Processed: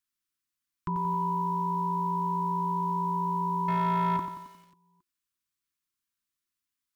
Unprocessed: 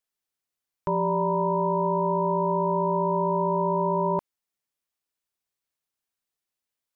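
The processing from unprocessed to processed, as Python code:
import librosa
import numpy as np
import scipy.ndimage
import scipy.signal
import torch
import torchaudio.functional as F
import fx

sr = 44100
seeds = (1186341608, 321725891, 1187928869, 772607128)

y = scipy.signal.sosfilt(scipy.signal.cheby1(5, 1.0, [360.0, 1000.0], 'bandstop', fs=sr, output='sos'), x)
y = fx.echo_feedback(y, sr, ms=271, feedback_pct=44, wet_db=-23.5)
y = fx.leveller(y, sr, passes=2, at=(3.68, 4.17))
y = fx.echo_crushed(y, sr, ms=89, feedback_pct=55, bits=9, wet_db=-8.5)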